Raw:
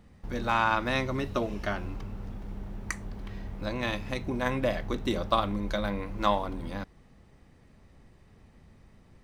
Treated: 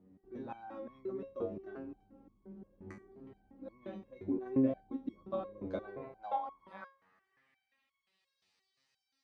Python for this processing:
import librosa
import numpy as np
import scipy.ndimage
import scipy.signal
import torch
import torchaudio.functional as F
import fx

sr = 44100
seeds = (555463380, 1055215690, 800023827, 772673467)

y = fx.octave_divider(x, sr, octaves=1, level_db=2.0, at=(5.21, 6.12))
y = fx.filter_sweep_bandpass(y, sr, from_hz=310.0, to_hz=4500.0, start_s=5.33, end_s=8.43, q=2.2)
y = fx.resonator_held(y, sr, hz=5.7, low_hz=94.0, high_hz=1100.0)
y = F.gain(torch.from_numpy(y), 10.5).numpy()